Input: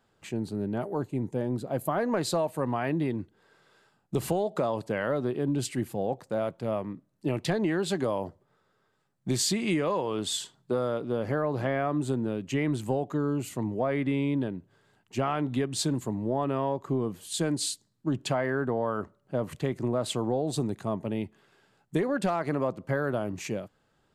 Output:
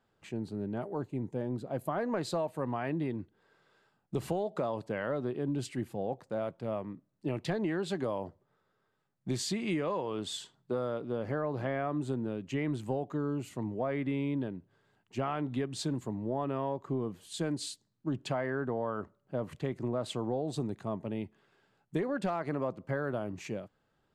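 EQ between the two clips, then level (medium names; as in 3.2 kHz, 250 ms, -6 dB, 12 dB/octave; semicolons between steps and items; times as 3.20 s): treble shelf 7.3 kHz -10.5 dB; -5.0 dB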